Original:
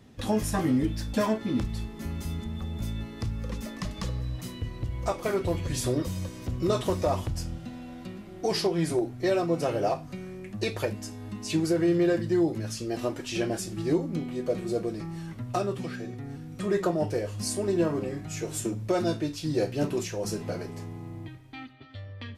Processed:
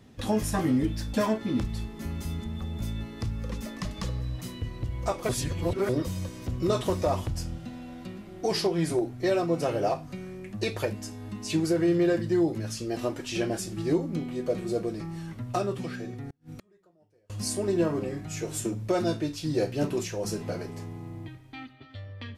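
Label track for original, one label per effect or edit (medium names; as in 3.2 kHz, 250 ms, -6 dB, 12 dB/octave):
5.290000	5.890000	reverse
16.250000	17.300000	inverted gate shuts at -30 dBFS, range -37 dB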